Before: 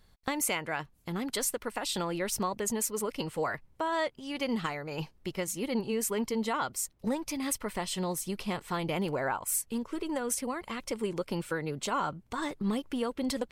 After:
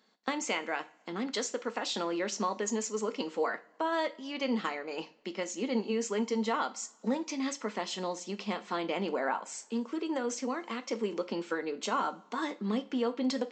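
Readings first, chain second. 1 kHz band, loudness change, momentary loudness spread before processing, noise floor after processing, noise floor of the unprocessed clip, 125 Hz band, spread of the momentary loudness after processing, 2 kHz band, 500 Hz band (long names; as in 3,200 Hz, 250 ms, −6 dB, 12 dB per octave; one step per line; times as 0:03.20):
0.0 dB, −1.0 dB, 5 LU, −62 dBFS, −64 dBFS, −7.5 dB, 6 LU, −0.5 dB, +0.5 dB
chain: elliptic high-pass filter 200 Hz, stop band 40 dB
coupled-rooms reverb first 0.3 s, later 1.5 s, from −22 dB, DRR 8.5 dB
downsampling to 16,000 Hz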